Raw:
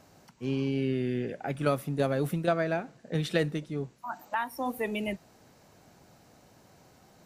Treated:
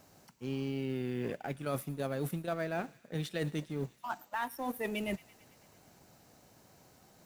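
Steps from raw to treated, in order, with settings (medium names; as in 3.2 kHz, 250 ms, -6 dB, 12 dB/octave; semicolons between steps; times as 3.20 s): companding laws mixed up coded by A; treble shelf 7.3 kHz +7 dB; reverse; compression 6:1, threshold -37 dBFS, peak gain reduction 15.5 dB; reverse; feedback echo behind a high-pass 111 ms, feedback 70%, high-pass 2.2 kHz, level -19 dB; trim +4.5 dB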